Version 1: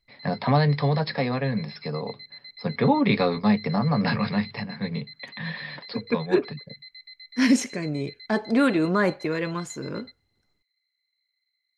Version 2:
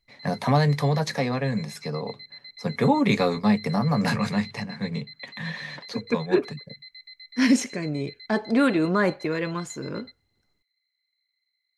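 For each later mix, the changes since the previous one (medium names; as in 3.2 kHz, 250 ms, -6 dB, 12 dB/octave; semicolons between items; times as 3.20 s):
first voice: remove brick-wall FIR low-pass 5.4 kHz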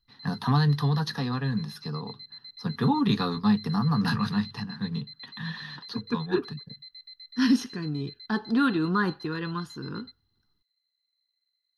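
master: add static phaser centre 2.2 kHz, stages 6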